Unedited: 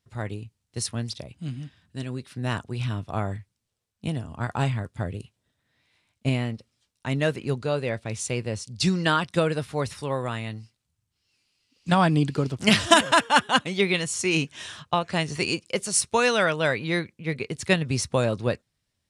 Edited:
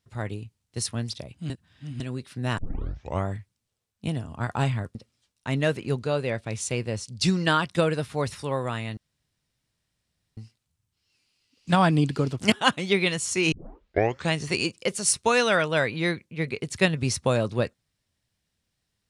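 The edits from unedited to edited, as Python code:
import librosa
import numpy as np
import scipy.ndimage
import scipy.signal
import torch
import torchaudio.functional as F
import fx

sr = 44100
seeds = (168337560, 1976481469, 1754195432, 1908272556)

y = fx.edit(x, sr, fx.reverse_span(start_s=1.5, length_s=0.5),
    fx.tape_start(start_s=2.58, length_s=0.68),
    fx.cut(start_s=4.95, length_s=1.59),
    fx.insert_room_tone(at_s=10.56, length_s=1.4),
    fx.cut(start_s=12.71, length_s=0.69),
    fx.tape_start(start_s=14.4, length_s=0.81), tone=tone)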